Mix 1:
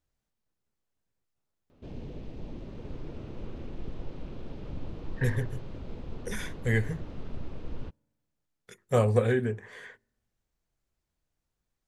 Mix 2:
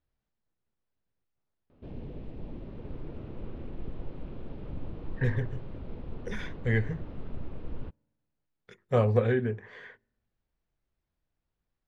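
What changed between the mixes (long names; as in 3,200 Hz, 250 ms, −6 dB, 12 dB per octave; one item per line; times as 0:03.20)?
speech: add high-shelf EQ 4,700 Hz +7 dB
master: add high-frequency loss of the air 250 metres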